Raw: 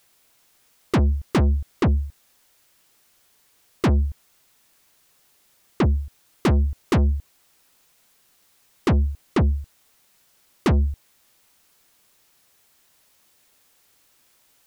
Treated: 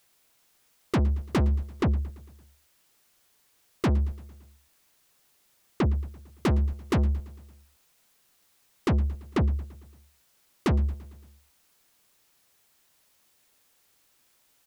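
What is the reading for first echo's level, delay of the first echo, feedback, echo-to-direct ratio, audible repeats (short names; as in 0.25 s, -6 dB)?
-20.5 dB, 0.113 s, 60%, -18.5 dB, 4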